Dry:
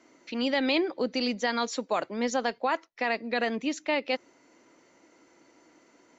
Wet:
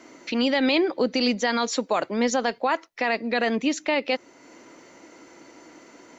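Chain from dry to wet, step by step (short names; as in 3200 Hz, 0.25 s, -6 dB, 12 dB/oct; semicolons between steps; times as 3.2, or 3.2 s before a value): in parallel at -0.5 dB: compressor, threshold -43 dBFS, peak gain reduction 19.5 dB; on the sum: limiter -18.5 dBFS, peak gain reduction 3.5 dB; gain +5.5 dB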